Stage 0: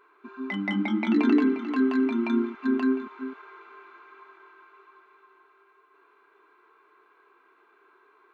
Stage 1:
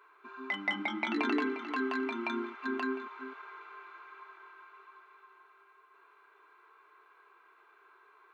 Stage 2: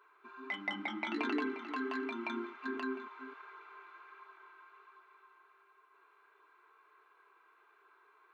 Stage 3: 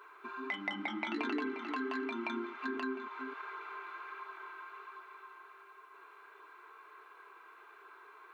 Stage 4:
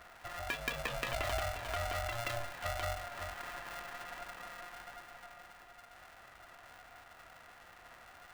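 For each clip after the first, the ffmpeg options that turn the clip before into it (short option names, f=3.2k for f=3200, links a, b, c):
-af "highpass=550"
-af "flanger=delay=0.2:depth=6.4:regen=-66:speed=1.4:shape=sinusoidal"
-af "acompressor=threshold=-52dB:ratio=2,volume=10dB"
-af "aeval=exprs='val(0)*sgn(sin(2*PI*350*n/s))':c=same"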